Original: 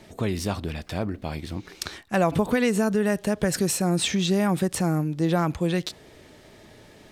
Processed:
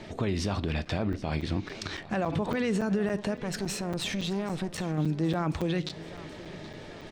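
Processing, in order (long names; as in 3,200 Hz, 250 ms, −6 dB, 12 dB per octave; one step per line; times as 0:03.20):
low-pass filter 5,000 Hz 12 dB per octave
in parallel at −0.5 dB: downward compressor, threshold −35 dBFS, peak gain reduction 17 dB
on the sum: brickwall limiter −20.5 dBFS, peak gain reduction 11 dB
0:03.40–0:04.98: tube saturation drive 25 dB, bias 0.65
repeating echo 776 ms, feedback 51%, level −17.5 dB
on a send at −16 dB: convolution reverb RT60 0.45 s, pre-delay 3 ms
on the sum: regular buffer underruns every 0.28 s, samples 256, zero, from 0:00.85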